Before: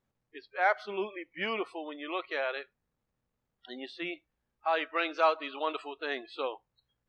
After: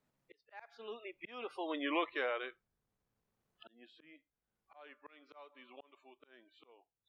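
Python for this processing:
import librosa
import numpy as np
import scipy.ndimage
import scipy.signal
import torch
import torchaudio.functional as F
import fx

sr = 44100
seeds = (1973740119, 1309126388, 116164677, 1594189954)

y = fx.doppler_pass(x, sr, speed_mps=34, closest_m=5.9, pass_at_s=1.78)
y = fx.auto_swell(y, sr, attack_ms=727.0)
y = fx.band_squash(y, sr, depth_pct=40)
y = y * 10.0 ** (9.5 / 20.0)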